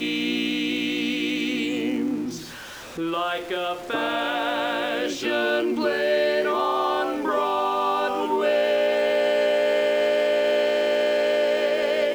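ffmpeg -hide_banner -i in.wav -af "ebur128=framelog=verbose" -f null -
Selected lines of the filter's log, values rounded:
Integrated loudness:
  I:         -23.1 LUFS
  Threshold: -33.3 LUFS
Loudness range:
  LRA:         5.5 LU
  Threshold: -43.4 LUFS
  LRA low:   -26.8 LUFS
  LRA high:  -21.3 LUFS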